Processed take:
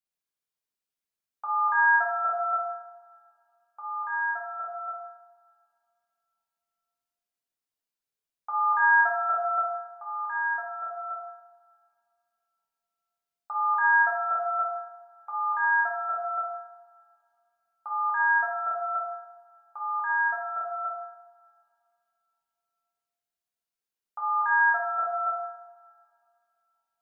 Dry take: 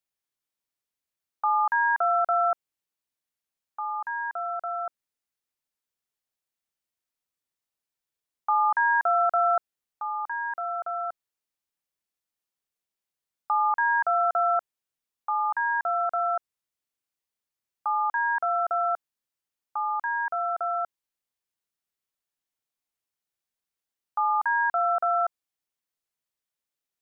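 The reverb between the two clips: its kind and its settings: two-slope reverb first 0.93 s, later 3 s, from -24 dB, DRR -5.5 dB; trim -9.5 dB

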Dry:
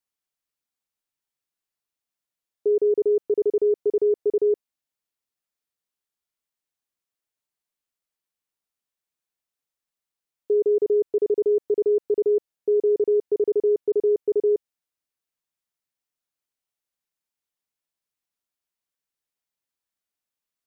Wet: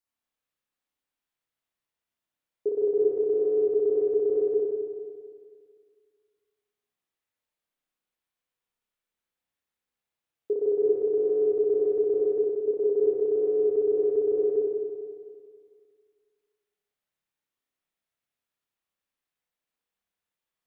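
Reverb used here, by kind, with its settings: spring tank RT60 2 s, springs 30/56 ms, chirp 30 ms, DRR -6 dB; trim -4 dB

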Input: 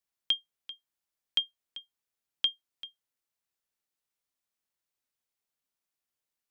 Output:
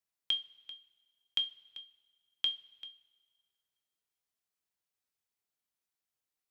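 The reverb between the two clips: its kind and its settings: two-slope reverb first 0.27 s, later 1.8 s, from -21 dB, DRR 6.5 dB; trim -3.5 dB

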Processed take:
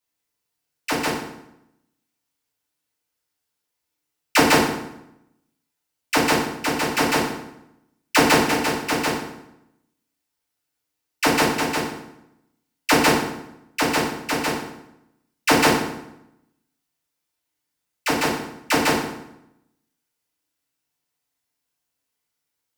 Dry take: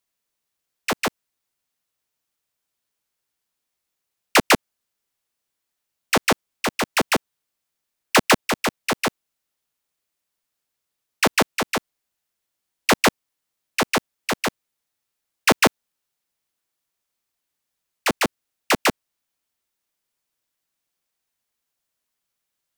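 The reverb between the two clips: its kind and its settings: FDN reverb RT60 0.83 s, low-frequency decay 1.2×, high-frequency decay 0.8×, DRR -6.5 dB; trim -6.5 dB

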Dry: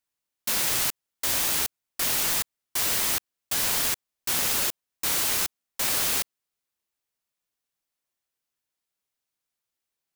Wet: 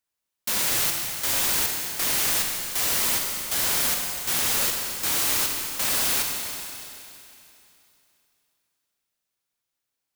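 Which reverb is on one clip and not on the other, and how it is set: Schroeder reverb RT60 2.9 s, combs from 32 ms, DRR 1.5 dB

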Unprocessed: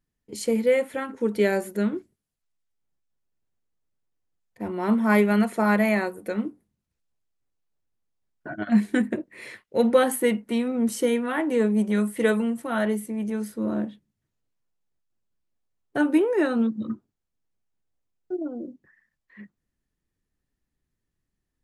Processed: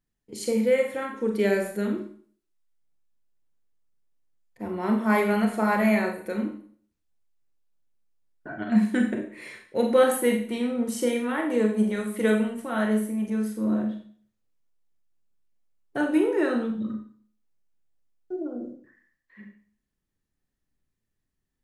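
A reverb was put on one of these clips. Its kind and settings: Schroeder reverb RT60 0.49 s, combs from 29 ms, DRR 2.5 dB; trim -3 dB

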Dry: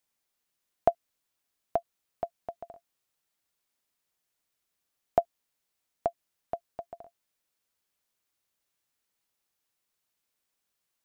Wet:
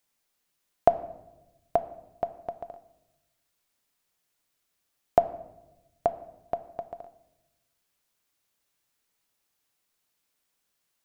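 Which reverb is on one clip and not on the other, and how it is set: simulated room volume 390 m³, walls mixed, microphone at 0.34 m; trim +4 dB

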